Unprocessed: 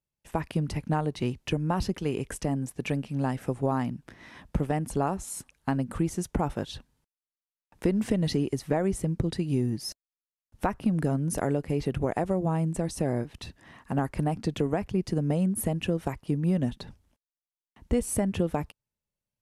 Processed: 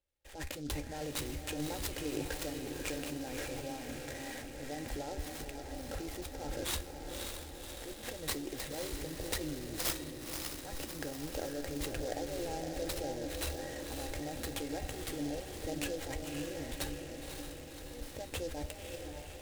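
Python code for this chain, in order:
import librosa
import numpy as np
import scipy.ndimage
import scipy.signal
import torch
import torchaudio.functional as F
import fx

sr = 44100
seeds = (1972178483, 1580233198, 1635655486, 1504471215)

y = x + 0.52 * np.pad(x, (int(3.7 * sr / 1000.0), 0))[:len(x)]
y = fx.over_compress(y, sr, threshold_db=-34.0, ratio=-1.0)
y = fx.transient(y, sr, attack_db=-5, sustain_db=6)
y = scipy.signal.sosfilt(scipy.signal.cheby1(6, 6, 5400.0, 'lowpass', fs=sr, output='sos'), y)
y = fx.fixed_phaser(y, sr, hz=480.0, stages=4)
y = fx.comb_fb(y, sr, f0_hz=73.0, decay_s=0.26, harmonics='all', damping=0.0, mix_pct=60)
y = fx.echo_diffused(y, sr, ms=555, feedback_pct=64, wet_db=-4.5)
y = fx.noise_mod_delay(y, sr, seeds[0], noise_hz=4900.0, depth_ms=0.055)
y = F.gain(torch.from_numpy(y), 7.5).numpy()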